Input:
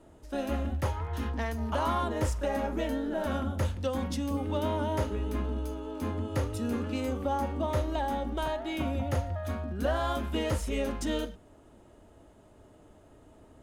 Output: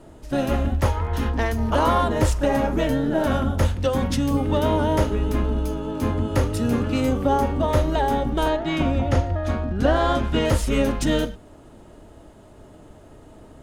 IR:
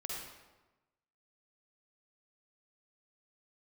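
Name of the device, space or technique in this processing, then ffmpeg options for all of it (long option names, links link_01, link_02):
octave pedal: -filter_complex "[0:a]asplit=2[link_01][link_02];[link_02]asetrate=22050,aresample=44100,atempo=2,volume=-7dB[link_03];[link_01][link_03]amix=inputs=2:normalize=0,asettb=1/sr,asplit=3[link_04][link_05][link_06];[link_04]atrim=end=8.494[link_07];[link_05]atrim=start=8.49:end=10.45,asetpts=PTS-STARTPTS,afade=type=in:duration=0.004:curve=qsin,afade=type=out:start_time=1.956:duration=0.004:curve=qsin,lowpass=7100[link_08];[link_06]atrim=start=10.446[link_09];[link_07][link_08]acrossfade=duration=0.004:curve1=hsin:curve2=qsin[link_10];[link_10][link_09]acrossfade=duration=0.004:curve1=qsin:curve2=hsin,volume=9dB"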